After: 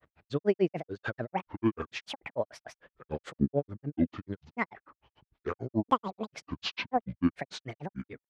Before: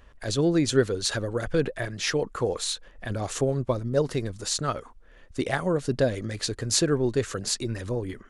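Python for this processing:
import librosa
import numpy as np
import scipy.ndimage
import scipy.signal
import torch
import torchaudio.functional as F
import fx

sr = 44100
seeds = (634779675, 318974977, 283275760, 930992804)

y = fx.granulator(x, sr, seeds[0], grain_ms=100.0, per_s=6.8, spray_ms=100.0, spread_st=12)
y = fx.bandpass_edges(y, sr, low_hz=120.0, high_hz=2400.0)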